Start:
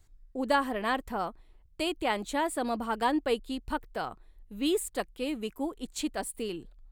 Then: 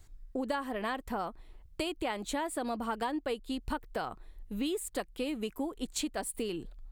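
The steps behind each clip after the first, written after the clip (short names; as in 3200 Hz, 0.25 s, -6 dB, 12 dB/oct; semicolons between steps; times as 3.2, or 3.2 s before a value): compressor 6:1, threshold -37 dBFS, peak gain reduction 15 dB; gain +5.5 dB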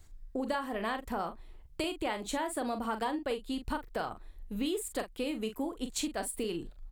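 doubler 41 ms -9 dB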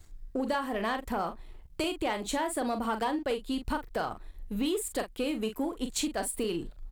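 sample leveller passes 1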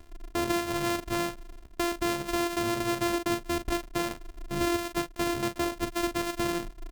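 sample sorter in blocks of 128 samples; gain +2 dB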